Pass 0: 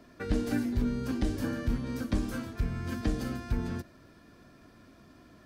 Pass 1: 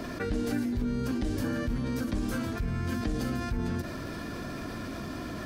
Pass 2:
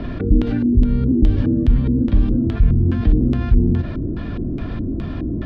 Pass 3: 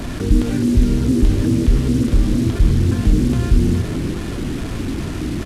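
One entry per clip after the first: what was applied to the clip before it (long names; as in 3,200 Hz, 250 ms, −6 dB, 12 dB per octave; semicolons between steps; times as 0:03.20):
envelope flattener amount 70%; level −4 dB
RIAA equalisation playback; auto-filter low-pass square 2.4 Hz 340–3,400 Hz; level +2.5 dB
linear delta modulator 64 kbit/s, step −27 dBFS; echo with shifted repeats 262 ms, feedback 43%, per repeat +76 Hz, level −12 dB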